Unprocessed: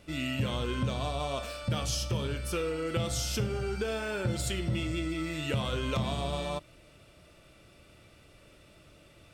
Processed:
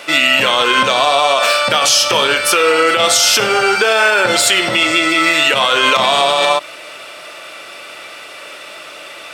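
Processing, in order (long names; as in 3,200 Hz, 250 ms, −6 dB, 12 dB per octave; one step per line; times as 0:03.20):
high-pass filter 820 Hz 12 dB per octave
high-shelf EQ 4,700 Hz −7.5 dB
boost into a limiter +32 dB
level −1 dB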